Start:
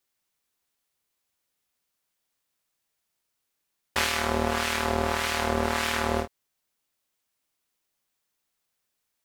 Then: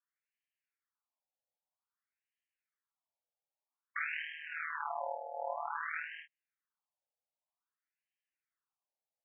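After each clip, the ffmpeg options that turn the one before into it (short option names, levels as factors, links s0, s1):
-af "afftfilt=real='re*between(b*sr/1024,620*pow(2300/620,0.5+0.5*sin(2*PI*0.52*pts/sr))/1.41,620*pow(2300/620,0.5+0.5*sin(2*PI*0.52*pts/sr))*1.41)':imag='im*between(b*sr/1024,620*pow(2300/620,0.5+0.5*sin(2*PI*0.52*pts/sr))/1.41,620*pow(2300/620,0.5+0.5*sin(2*PI*0.52*pts/sr))*1.41)':win_size=1024:overlap=0.75,volume=0.447"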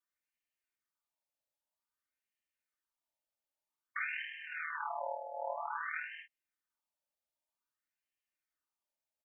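-af "aecho=1:1:3.3:0.53,volume=0.841"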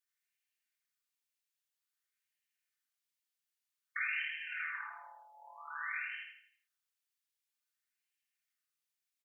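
-af "highpass=f=1500:w=0.5412,highpass=f=1500:w=1.3066,aecho=1:1:83|166|249|332|415:0.562|0.225|0.09|0.036|0.0144,volume=1.33"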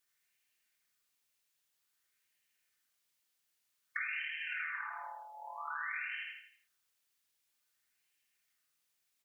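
-af "acompressor=threshold=0.00501:ratio=4,volume=2.66"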